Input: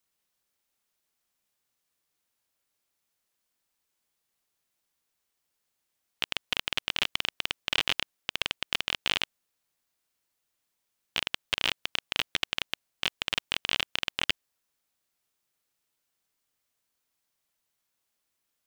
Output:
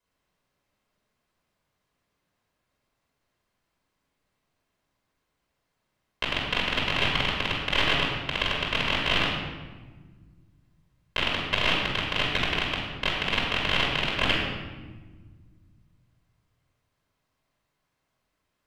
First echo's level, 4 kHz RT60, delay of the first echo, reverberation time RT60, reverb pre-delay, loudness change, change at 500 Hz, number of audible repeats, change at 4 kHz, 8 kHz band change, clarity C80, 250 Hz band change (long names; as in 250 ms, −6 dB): no echo audible, 0.90 s, no echo audible, 1.3 s, 3 ms, +4.5 dB, +11.5 dB, no echo audible, +3.0 dB, −3.5 dB, 3.0 dB, +13.5 dB